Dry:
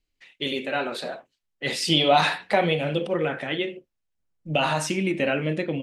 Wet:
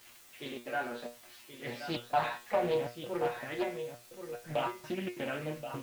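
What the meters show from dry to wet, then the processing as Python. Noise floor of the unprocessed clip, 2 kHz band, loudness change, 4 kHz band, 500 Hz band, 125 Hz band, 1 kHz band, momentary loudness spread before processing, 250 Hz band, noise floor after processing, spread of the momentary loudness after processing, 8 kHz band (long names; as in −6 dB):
−79 dBFS, −12.5 dB, −11.5 dB, −19.0 dB, −9.0 dB, −14.5 dB, −9.5 dB, 12 LU, −12.0 dB, −57 dBFS, 13 LU, −15.5 dB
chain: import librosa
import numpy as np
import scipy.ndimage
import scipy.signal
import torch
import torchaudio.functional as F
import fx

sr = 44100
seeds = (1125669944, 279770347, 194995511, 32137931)

y = x + 0.5 * 10.0 ** (-22.0 / 20.0) * np.diff(np.sign(x), prepend=np.sign(x[:1]))
y = scipy.signal.sosfilt(scipy.signal.butter(2, 1900.0, 'lowpass', fs=sr, output='sos'), y)
y = fx.step_gate(y, sr, bpm=183, pattern='xx..xxx.xxx', floor_db=-60.0, edge_ms=4.5)
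y = fx.quant_dither(y, sr, seeds[0], bits=8, dither='triangular')
y = fx.comb_fb(y, sr, f0_hz=120.0, decay_s=0.27, harmonics='all', damping=0.0, mix_pct=90)
y = y + 10.0 ** (-9.5 / 20.0) * np.pad(y, (int(1077 * sr / 1000.0), 0))[:len(y)]
y = fx.doppler_dist(y, sr, depth_ms=0.36)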